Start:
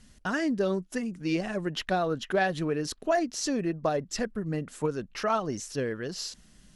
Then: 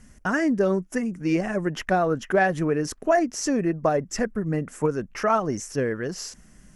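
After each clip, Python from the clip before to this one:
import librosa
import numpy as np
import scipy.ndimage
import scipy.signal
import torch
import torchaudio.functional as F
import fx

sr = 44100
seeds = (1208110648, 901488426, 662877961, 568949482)

y = fx.curve_eq(x, sr, hz=(2100.0, 4000.0, 5700.0), db=(0, -15, -2))
y = y * librosa.db_to_amplitude(5.5)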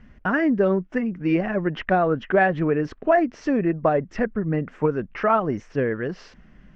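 y = scipy.signal.sosfilt(scipy.signal.butter(4, 3300.0, 'lowpass', fs=sr, output='sos'), x)
y = y * librosa.db_to_amplitude(2.0)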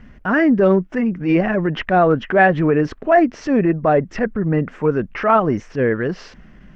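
y = fx.transient(x, sr, attack_db=-7, sustain_db=0)
y = y * librosa.db_to_amplitude(7.0)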